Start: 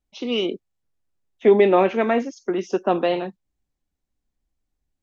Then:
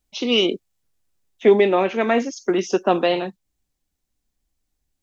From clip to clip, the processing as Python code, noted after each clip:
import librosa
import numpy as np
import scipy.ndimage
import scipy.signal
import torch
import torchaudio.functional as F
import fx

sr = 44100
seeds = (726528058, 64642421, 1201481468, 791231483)

y = fx.rider(x, sr, range_db=4, speed_s=0.5)
y = fx.high_shelf(y, sr, hz=2900.0, db=8.5)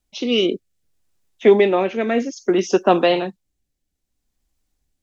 y = fx.rotary(x, sr, hz=0.6)
y = y * librosa.db_to_amplitude(3.5)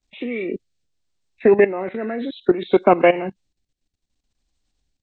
y = fx.freq_compress(x, sr, knee_hz=1400.0, ratio=1.5)
y = fx.level_steps(y, sr, step_db=15)
y = y * librosa.db_to_amplitude(4.5)